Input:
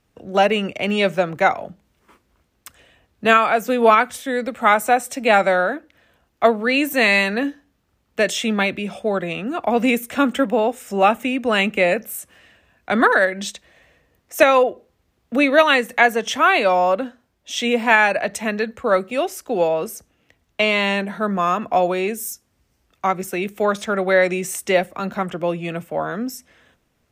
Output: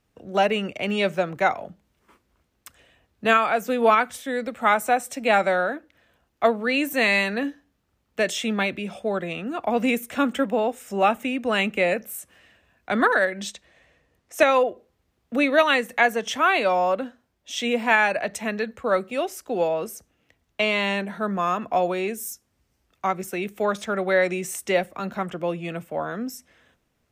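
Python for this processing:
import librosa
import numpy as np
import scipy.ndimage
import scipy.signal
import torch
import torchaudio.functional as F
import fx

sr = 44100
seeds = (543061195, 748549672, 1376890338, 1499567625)

y = fx.lowpass(x, sr, hz=11000.0, slope=12, at=(13.49, 14.5))
y = F.gain(torch.from_numpy(y), -4.5).numpy()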